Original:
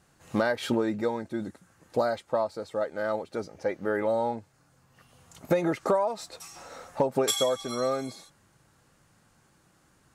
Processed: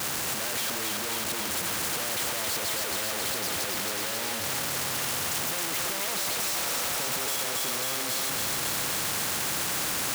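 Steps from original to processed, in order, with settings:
sign of each sample alone
high-pass filter 65 Hz
low-shelf EQ 170 Hz −7.5 dB
feedback echo with a high-pass in the loop 271 ms, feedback 78%, high-pass 420 Hz, level −3.5 dB
every bin compressed towards the loudest bin 2 to 1

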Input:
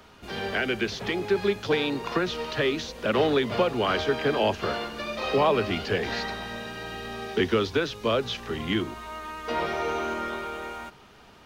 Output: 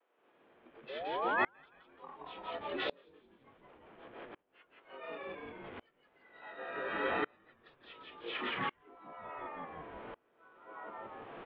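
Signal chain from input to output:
compressor on every frequency bin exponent 0.4
compressor whose output falls as the input rises −23 dBFS, ratio −0.5
flanger 1.1 Hz, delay 6.4 ms, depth 4.4 ms, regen +82%
noise reduction from a noise print of the clip's start 18 dB
single-sideband voice off tune +61 Hz 280–3,100 Hz
sound drawn into the spectrogram rise, 0:00.89–0:01.48, 520–2,200 Hz −33 dBFS
pitch vibrato 0.7 Hz 35 cents
pitch-shifted copies added −5 semitones −4 dB
echo with shifted repeats 172 ms, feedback 43%, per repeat −100 Hz, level −3 dB
tremolo with a ramp in dB swelling 0.69 Hz, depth 32 dB

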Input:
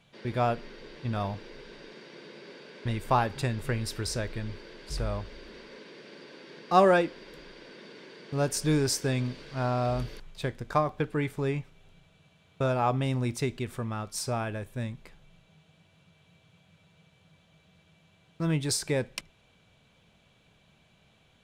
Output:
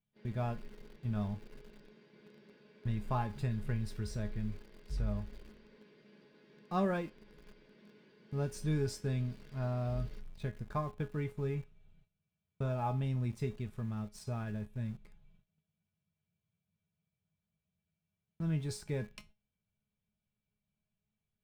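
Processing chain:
bass and treble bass +11 dB, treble −5 dB
noise gate −47 dBFS, range −16 dB
low-shelf EQ 110 Hz +3.5 dB
tuned comb filter 210 Hz, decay 0.22 s, harmonics all, mix 80%
in parallel at −6 dB: centre clipping without the shift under −43 dBFS
on the sum: level −7.5 dB

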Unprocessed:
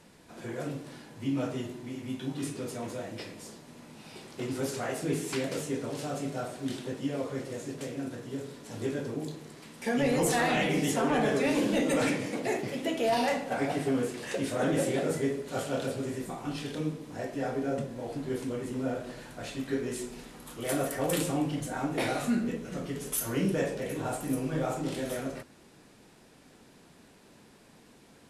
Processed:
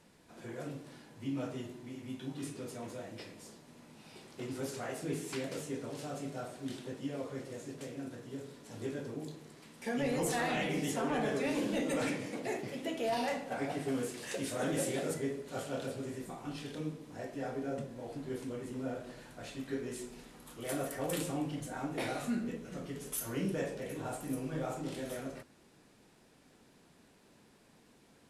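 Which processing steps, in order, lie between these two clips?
0:13.88–0:15.14: high-shelf EQ 3,700 Hz +7.5 dB
level −6.5 dB

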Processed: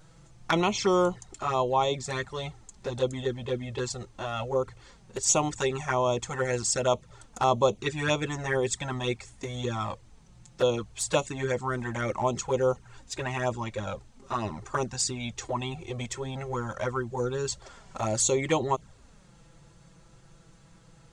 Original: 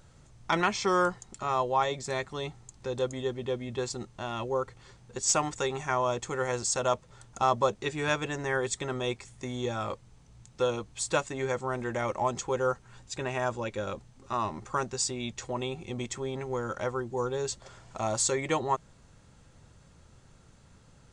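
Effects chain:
flanger swept by the level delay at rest 6.8 ms, full sweep at −24.5 dBFS
level +5 dB

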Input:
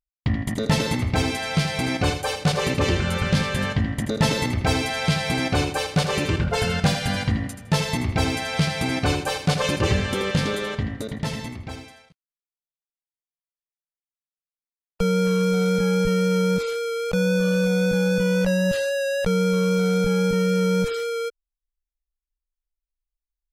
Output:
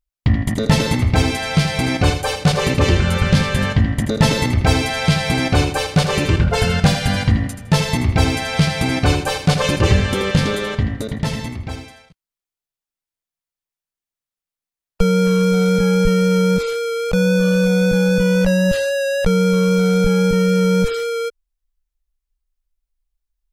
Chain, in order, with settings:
low-shelf EQ 78 Hz +9 dB
level +4.5 dB

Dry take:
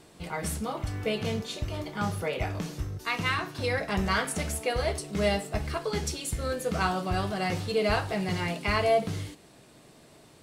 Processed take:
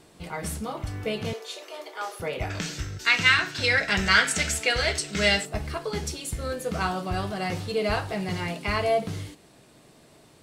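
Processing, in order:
0:01.33–0:02.20: Butterworth high-pass 390 Hz 36 dB per octave
0:02.50–0:05.45: gain on a spectral selection 1,300–8,500 Hz +11 dB

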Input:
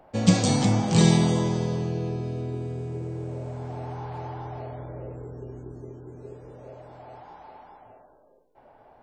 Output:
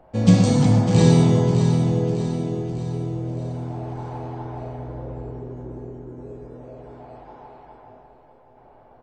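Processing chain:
spectral tilt −1.5 dB per octave
repeating echo 602 ms, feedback 49%, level −9 dB
on a send at −2.5 dB: convolution reverb, pre-delay 3 ms
on the sum: level −1 dB

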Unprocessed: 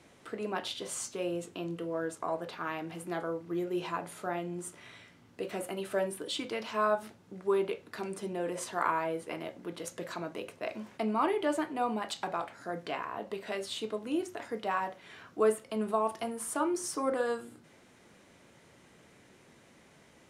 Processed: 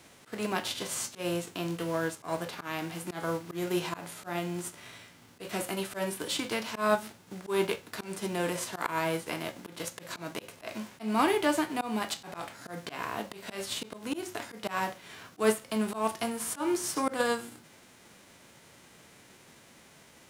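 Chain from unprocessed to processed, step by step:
spectral envelope flattened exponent 0.6
volume swells 139 ms
level +3.5 dB

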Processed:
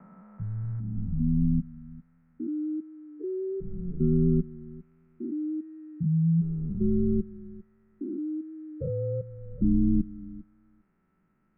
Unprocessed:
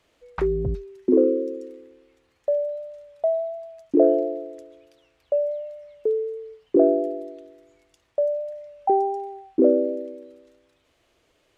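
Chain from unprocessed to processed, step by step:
spectrum averaged block by block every 400 ms
hollow resonant body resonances 270/460/1,600 Hz, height 16 dB, ringing for 70 ms
single-sideband voice off tune −280 Hz 300–2,300 Hz
level −7.5 dB

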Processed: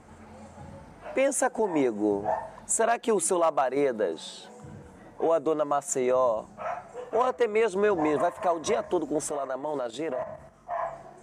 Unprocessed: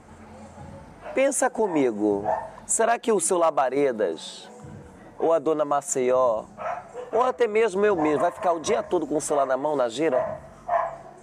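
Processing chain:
0:09.29–0:10.82: output level in coarse steps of 9 dB
level −3 dB

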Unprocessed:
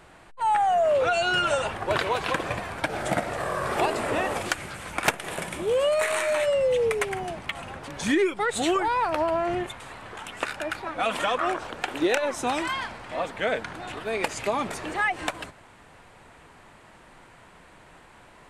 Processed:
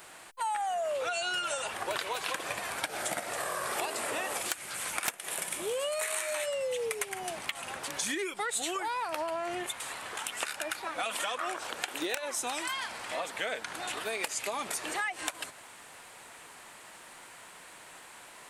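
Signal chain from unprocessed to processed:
RIAA equalisation recording
downward compressor 4 to 1, threshold −32 dBFS, peak gain reduction 17 dB
wrap-around overflow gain 12.5 dB

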